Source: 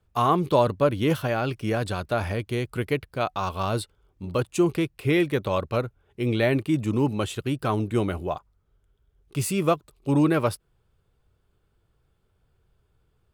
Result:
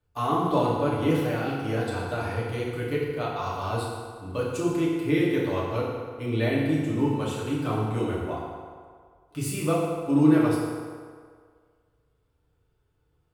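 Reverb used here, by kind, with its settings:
feedback delay network reverb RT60 1.9 s, low-frequency decay 0.75×, high-frequency decay 0.65×, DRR −6 dB
level −9 dB

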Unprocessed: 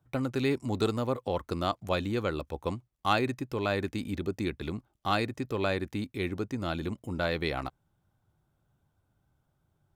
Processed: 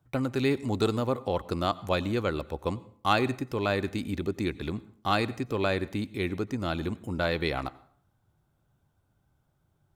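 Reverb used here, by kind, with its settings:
dense smooth reverb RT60 0.56 s, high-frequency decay 0.7×, pre-delay 80 ms, DRR 19.5 dB
level +2 dB

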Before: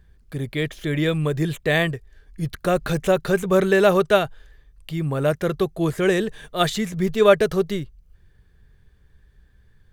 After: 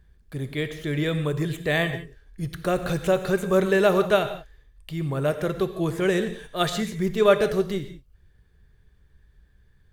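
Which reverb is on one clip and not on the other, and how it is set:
reverb whose tail is shaped and stops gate 200 ms flat, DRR 9 dB
level −3.5 dB

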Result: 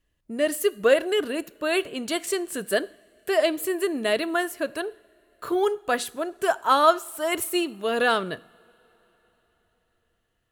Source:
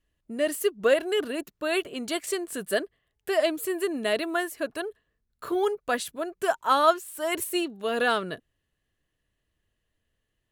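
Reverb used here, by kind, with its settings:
coupled-rooms reverb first 0.57 s, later 4.5 s, from −21 dB, DRR 17 dB
level +2.5 dB

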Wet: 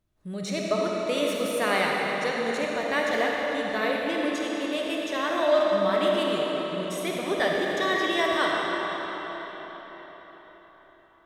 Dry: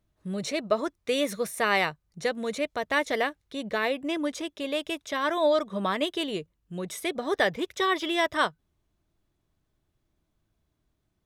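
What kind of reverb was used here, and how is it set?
comb and all-pass reverb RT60 4.9 s, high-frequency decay 0.8×, pre-delay 10 ms, DRR −3 dB
level −2.5 dB

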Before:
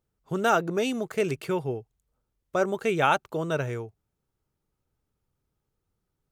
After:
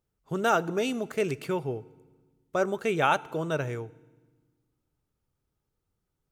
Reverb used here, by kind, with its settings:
feedback delay network reverb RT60 1.3 s, low-frequency decay 1.55×, high-frequency decay 0.95×, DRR 19.5 dB
level −1.5 dB

